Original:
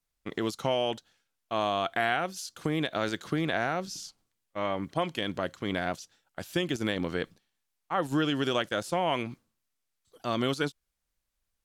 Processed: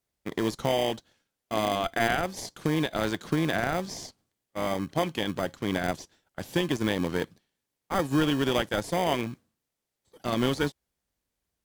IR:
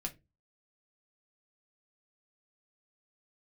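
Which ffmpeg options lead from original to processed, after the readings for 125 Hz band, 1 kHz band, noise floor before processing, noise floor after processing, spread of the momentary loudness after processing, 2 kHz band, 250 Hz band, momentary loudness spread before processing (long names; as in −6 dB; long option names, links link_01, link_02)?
+4.0 dB, +1.0 dB, −82 dBFS, −85 dBFS, 12 LU, +1.0 dB, +3.5 dB, 11 LU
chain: -filter_complex "[0:a]highpass=60,asplit=2[link_01][link_02];[link_02]acrusher=samples=32:mix=1:aa=0.000001,volume=-5dB[link_03];[link_01][link_03]amix=inputs=2:normalize=0"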